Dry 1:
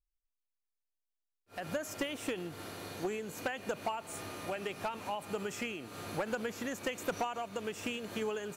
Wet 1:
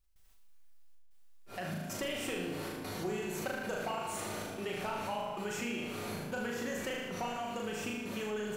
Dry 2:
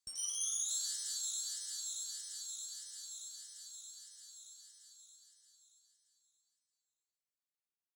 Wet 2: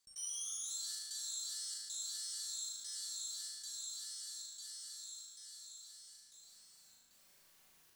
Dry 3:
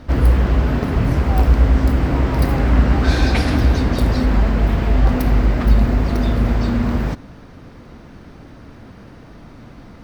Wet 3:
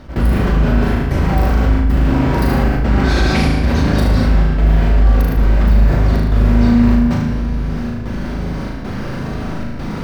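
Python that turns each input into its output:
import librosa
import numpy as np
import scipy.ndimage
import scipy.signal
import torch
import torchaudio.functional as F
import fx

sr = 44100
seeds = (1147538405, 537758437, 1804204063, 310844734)

p1 = fx.rider(x, sr, range_db=5, speed_s=2.0)
p2 = fx.step_gate(p1, sr, bpm=95, pattern='.xxxxx.xxxx', floor_db=-24.0, edge_ms=4.5)
p3 = p2 + fx.room_flutter(p2, sr, wall_m=6.5, rt60_s=0.67, dry=0)
p4 = fx.room_shoebox(p3, sr, seeds[0], volume_m3=2100.0, walls='mixed', distance_m=1.1)
p5 = fx.env_flatten(p4, sr, amount_pct=50)
y = p5 * 10.0 ** (-5.5 / 20.0)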